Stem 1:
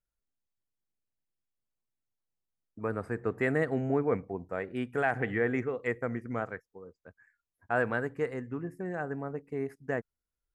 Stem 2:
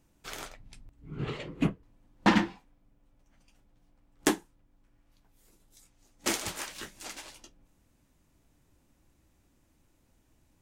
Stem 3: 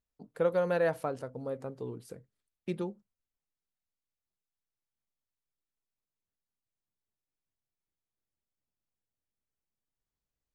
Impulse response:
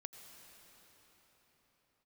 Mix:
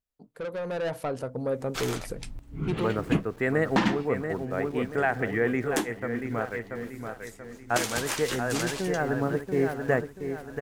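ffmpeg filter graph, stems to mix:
-filter_complex "[0:a]aeval=exprs='val(0)*gte(abs(val(0)),0.00316)':c=same,volume=-3dB,asplit=2[a][b];[b]volume=-7.5dB[c];[1:a]adelay=1500,volume=1.5dB[d];[2:a]acontrast=37,asoftclip=type=tanh:threshold=-24dB,volume=-7dB,asplit=2[e][f];[f]apad=whole_len=534063[g];[d][g]sidechaincompress=threshold=-45dB:ratio=8:attack=16:release=291[h];[c]aecho=0:1:684|1368|2052|2736|3420:1|0.39|0.152|0.0593|0.0231[i];[a][h][e][i]amix=inputs=4:normalize=0,dynaudnorm=f=240:g=9:m=12dB,alimiter=limit=-12dB:level=0:latency=1:release=452"

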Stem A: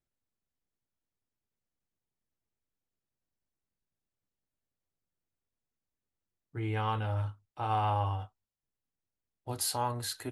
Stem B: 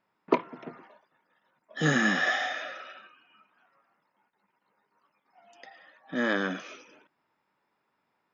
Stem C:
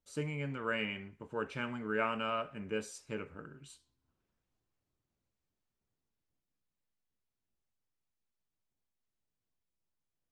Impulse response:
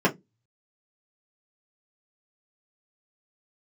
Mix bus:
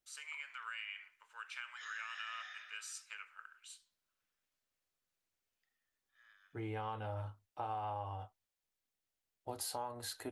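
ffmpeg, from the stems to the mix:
-filter_complex "[0:a]equalizer=f=640:t=o:w=1.4:g=7,volume=-5.5dB[a];[1:a]alimiter=limit=-18dB:level=0:latency=1:release=105,volume=-15.5dB[b];[2:a]acrossover=split=130|3000[c][d][e];[d]acompressor=threshold=-38dB:ratio=2.5[f];[c][f][e]amix=inputs=3:normalize=0,volume=2dB,asplit=2[g][h];[h]apad=whole_len=367464[i];[b][i]sidechaingate=range=-19dB:threshold=-51dB:ratio=16:detection=peak[j];[j][g]amix=inputs=2:normalize=0,highpass=f=1.3k:w=0.5412,highpass=f=1.3k:w=1.3066,acompressor=threshold=-40dB:ratio=6,volume=0dB[k];[a][k]amix=inputs=2:normalize=0,equalizer=f=130:w=7.3:g=-14.5,acompressor=threshold=-38dB:ratio=6"

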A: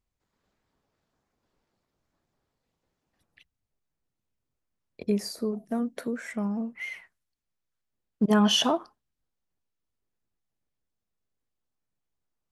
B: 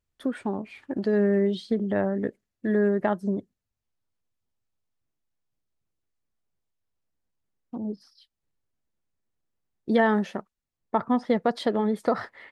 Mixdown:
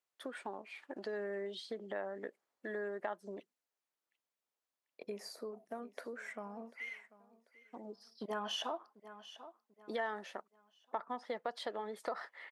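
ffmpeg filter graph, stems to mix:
-filter_complex "[0:a]highshelf=f=2.8k:g=-11,volume=-2.5dB,asplit=2[a][b];[b]volume=-21.5dB[c];[1:a]volume=-3.5dB[d];[c]aecho=0:1:741|1482|2223|2964|3705:1|0.37|0.137|0.0507|0.0187[e];[a][d][e]amix=inputs=3:normalize=0,highpass=580,acompressor=threshold=-42dB:ratio=2"

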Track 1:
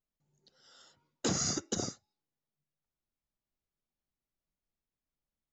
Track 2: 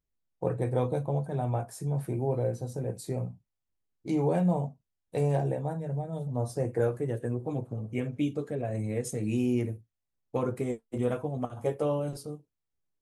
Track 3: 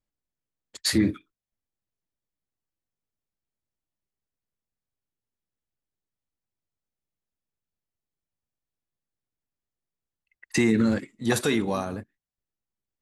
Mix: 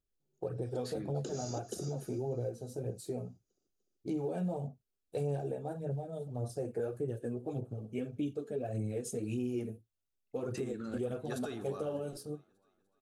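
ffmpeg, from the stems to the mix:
-filter_complex "[0:a]equalizer=f=400:w=1.5:g=7.5,acompressor=threshold=-31dB:ratio=6,volume=-7.5dB,asplit=2[a][b];[b]volume=-14.5dB[c];[1:a]bass=f=250:g=7,treble=f=4k:g=-1,aphaser=in_gain=1:out_gain=1:delay=4.8:decay=0.47:speed=1.7:type=sinusoidal,lowshelf=f=240:g=-11.5,volume=-3.5dB[d];[2:a]equalizer=f=1.2k:w=1.3:g=10,volume=-19dB,asplit=2[e][f];[f]volume=-20.5dB[g];[c][g]amix=inputs=2:normalize=0,aecho=0:1:297|594|891|1188|1485|1782|2079|2376:1|0.53|0.281|0.149|0.0789|0.0418|0.0222|0.0117[h];[a][d][e][h]amix=inputs=4:normalize=0,equalizer=f=160:t=o:w=0.33:g=-4,equalizer=f=400:t=o:w=0.33:g=5,equalizer=f=1k:t=o:w=0.33:g=-11,equalizer=f=2k:t=o:w=0.33:g=-12,alimiter=level_in=3dB:limit=-24dB:level=0:latency=1:release=201,volume=-3dB"

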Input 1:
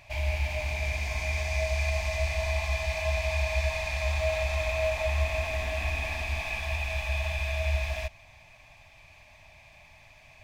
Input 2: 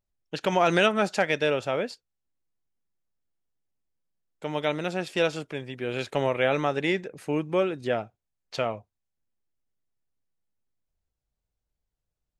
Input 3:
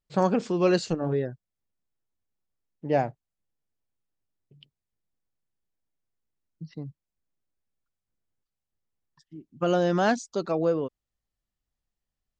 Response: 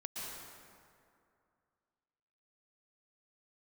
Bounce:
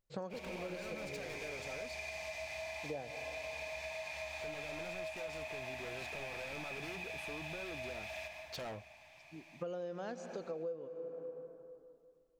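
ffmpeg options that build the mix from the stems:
-filter_complex "[0:a]highpass=210,bandreject=f=1.1k:w=13,adelay=200,volume=-8dB,asplit=2[a][b];[b]volume=-3.5dB[c];[1:a]alimiter=limit=-17dB:level=0:latency=1,asoftclip=type=hard:threshold=-35.5dB,volume=-3.5dB,asplit=2[d][e];[2:a]equalizer=f=500:t=o:w=0.26:g=12.5,volume=-10dB,asplit=2[f][g];[g]volume=-10dB[h];[e]apad=whole_len=546691[i];[f][i]sidechaincompress=threshold=-50dB:ratio=8:attack=16:release=390[j];[3:a]atrim=start_sample=2205[k];[c][h]amix=inputs=2:normalize=0[l];[l][k]afir=irnorm=-1:irlink=0[m];[a][d][j][m]amix=inputs=4:normalize=0,acompressor=threshold=-41dB:ratio=5"

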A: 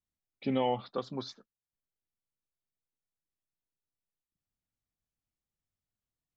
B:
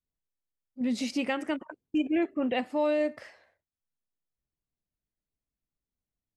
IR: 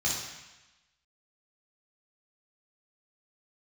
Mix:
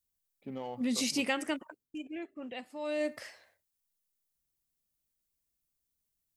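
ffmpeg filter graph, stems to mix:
-filter_complex "[0:a]adynamicsmooth=sensitivity=4:basefreq=1.4k,volume=-11dB[a];[1:a]crystalizer=i=3.5:c=0,volume=9dB,afade=t=out:st=1.47:d=0.45:silence=0.266073,afade=t=in:st=2.79:d=0.37:silence=0.251189[b];[a][b]amix=inputs=2:normalize=0"

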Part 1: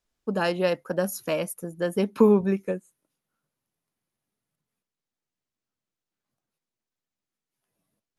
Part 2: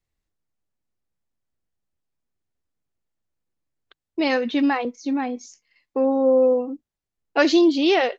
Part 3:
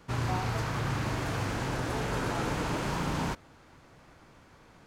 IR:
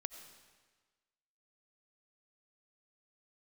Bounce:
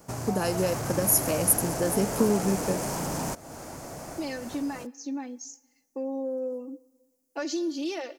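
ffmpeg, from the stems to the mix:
-filter_complex "[0:a]acompressor=threshold=-27dB:ratio=3,volume=-2dB[a];[1:a]highpass=f=400:p=1,aecho=1:1:3.4:0.65,volume=-15.5dB,asplit=2[b][c];[c]volume=-11.5dB[d];[2:a]equalizer=f=670:w=1.9:g=10.5,dynaudnorm=f=370:g=3:m=13.5dB,volume=-4dB[e];[b][e]amix=inputs=2:normalize=0,asoftclip=type=tanh:threshold=-20.5dB,acompressor=threshold=-36dB:ratio=4,volume=0dB[f];[3:a]atrim=start_sample=2205[g];[d][g]afir=irnorm=-1:irlink=0[h];[a][f][h]amix=inputs=3:normalize=0,aexciter=amount=7.6:drive=3.7:freq=5.2k,equalizer=f=240:w=0.54:g=6.5"

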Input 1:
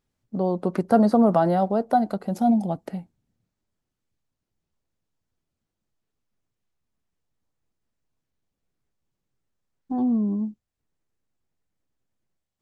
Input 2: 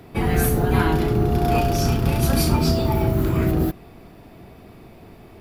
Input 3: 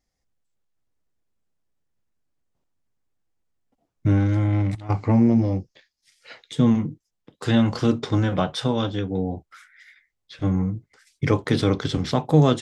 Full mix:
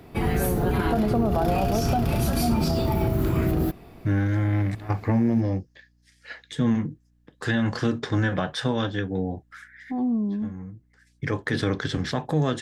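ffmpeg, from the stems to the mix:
-filter_complex "[0:a]aeval=exprs='val(0)+0.001*(sin(2*PI*60*n/s)+sin(2*PI*2*60*n/s)/2+sin(2*PI*3*60*n/s)/3+sin(2*PI*4*60*n/s)/4+sin(2*PI*5*60*n/s)/5)':c=same,volume=-2dB,asplit=2[a][b];[1:a]volume=-2.5dB[c];[2:a]equalizer=f=1.7k:w=5.2:g=13.5,volume=-2dB[d];[b]apad=whole_len=556339[e];[d][e]sidechaincompress=threshold=-38dB:ratio=12:attack=16:release=1310[f];[a][c][f]amix=inputs=3:normalize=0,alimiter=limit=-14dB:level=0:latency=1:release=59"

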